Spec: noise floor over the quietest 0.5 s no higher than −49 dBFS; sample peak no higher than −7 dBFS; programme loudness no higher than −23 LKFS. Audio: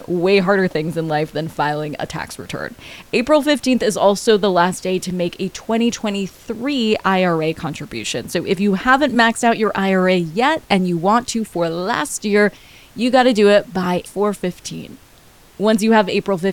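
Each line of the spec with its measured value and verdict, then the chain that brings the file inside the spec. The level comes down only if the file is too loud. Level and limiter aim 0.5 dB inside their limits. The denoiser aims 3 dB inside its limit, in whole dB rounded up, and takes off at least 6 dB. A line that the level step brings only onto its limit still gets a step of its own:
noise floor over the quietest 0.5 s −47 dBFS: out of spec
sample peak −1.5 dBFS: out of spec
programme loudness −17.5 LKFS: out of spec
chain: level −6 dB

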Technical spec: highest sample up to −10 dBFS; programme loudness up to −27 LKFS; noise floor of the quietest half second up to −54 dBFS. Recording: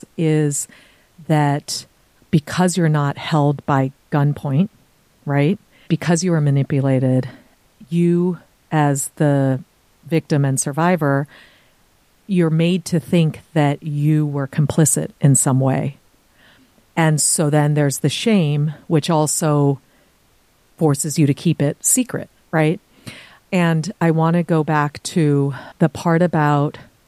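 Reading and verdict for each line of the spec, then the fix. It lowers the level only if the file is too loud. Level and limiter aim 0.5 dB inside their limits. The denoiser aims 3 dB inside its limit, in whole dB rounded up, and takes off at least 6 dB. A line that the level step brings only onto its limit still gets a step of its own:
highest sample −3.0 dBFS: out of spec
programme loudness −18.0 LKFS: out of spec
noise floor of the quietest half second −57 dBFS: in spec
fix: level −9.5 dB

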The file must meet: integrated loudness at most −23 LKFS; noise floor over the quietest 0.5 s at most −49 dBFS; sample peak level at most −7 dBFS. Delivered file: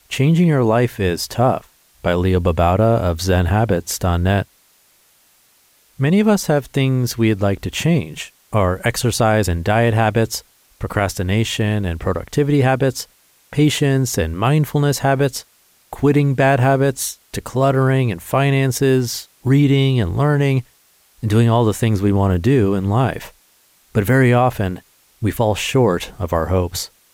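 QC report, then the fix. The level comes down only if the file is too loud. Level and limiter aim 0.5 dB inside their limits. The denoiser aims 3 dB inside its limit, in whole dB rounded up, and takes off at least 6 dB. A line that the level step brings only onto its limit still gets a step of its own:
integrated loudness −17.5 LKFS: out of spec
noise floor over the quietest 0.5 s −56 dBFS: in spec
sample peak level −5.5 dBFS: out of spec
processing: level −6 dB

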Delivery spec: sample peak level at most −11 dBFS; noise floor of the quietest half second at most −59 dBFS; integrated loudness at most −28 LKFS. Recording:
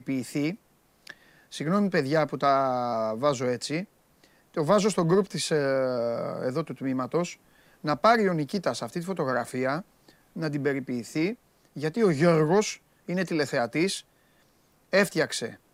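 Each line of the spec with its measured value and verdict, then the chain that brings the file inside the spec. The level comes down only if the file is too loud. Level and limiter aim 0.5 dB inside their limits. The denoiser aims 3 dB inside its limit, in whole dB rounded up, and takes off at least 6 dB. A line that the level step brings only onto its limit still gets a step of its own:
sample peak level −7.5 dBFS: out of spec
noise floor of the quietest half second −64 dBFS: in spec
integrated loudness −27.0 LKFS: out of spec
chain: level −1.5 dB
brickwall limiter −11.5 dBFS

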